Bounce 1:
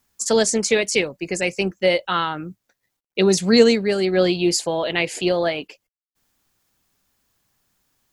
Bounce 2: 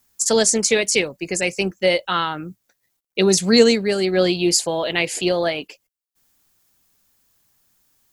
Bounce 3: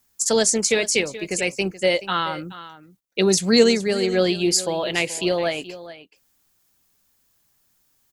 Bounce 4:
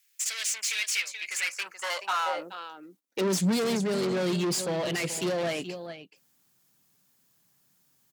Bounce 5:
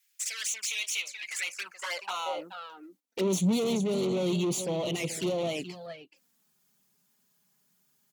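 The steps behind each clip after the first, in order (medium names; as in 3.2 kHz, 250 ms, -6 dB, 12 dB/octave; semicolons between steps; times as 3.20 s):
treble shelf 5.7 kHz +8 dB
delay 427 ms -15.5 dB; trim -2 dB
valve stage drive 27 dB, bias 0.5; high-pass sweep 2.3 kHz -> 150 Hz, 1.20–3.58 s
touch-sensitive flanger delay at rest 5 ms, full sweep at -26.5 dBFS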